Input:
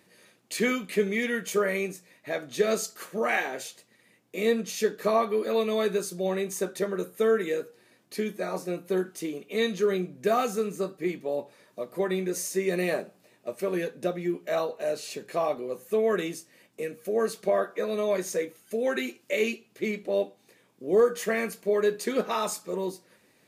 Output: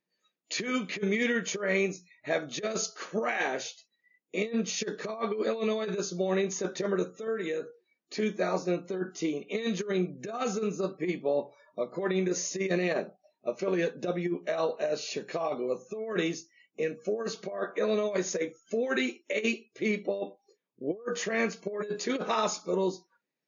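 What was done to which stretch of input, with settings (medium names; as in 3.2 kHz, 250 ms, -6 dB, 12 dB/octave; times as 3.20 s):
7.27–8.20 s: compression 4:1, threshold -32 dBFS
whole clip: compressor with a negative ratio -28 dBFS, ratio -0.5; spectral noise reduction 28 dB; FFT band-pass 120–7000 Hz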